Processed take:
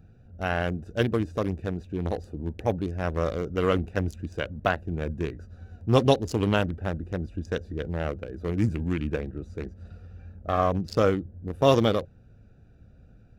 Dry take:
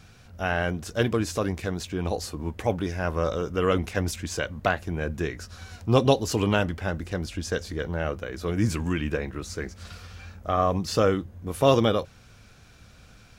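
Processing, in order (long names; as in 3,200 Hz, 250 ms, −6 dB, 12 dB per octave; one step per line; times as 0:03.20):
adaptive Wiener filter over 41 samples
high-shelf EQ 11,000 Hz +5 dB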